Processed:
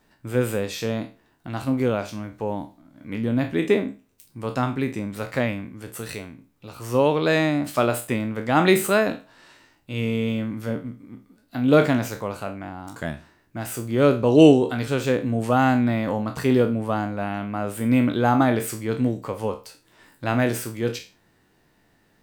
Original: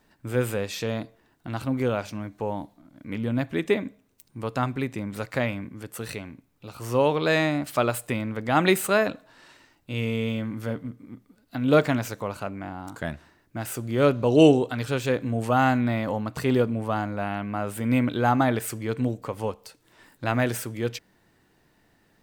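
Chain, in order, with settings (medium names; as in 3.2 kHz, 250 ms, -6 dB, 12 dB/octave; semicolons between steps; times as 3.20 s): spectral sustain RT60 0.32 s; dynamic bell 260 Hz, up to +4 dB, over -31 dBFS, Q 0.7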